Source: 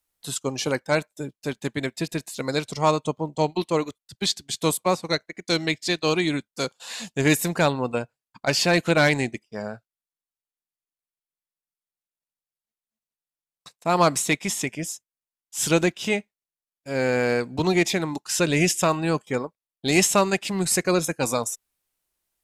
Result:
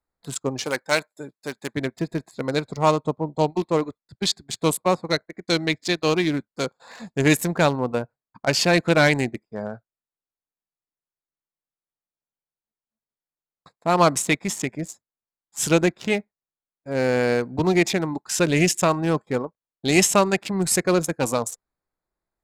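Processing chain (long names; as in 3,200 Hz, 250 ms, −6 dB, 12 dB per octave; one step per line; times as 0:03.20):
adaptive Wiener filter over 15 samples
0:00.64–0:01.74: spectral tilt +3.5 dB per octave
level +2 dB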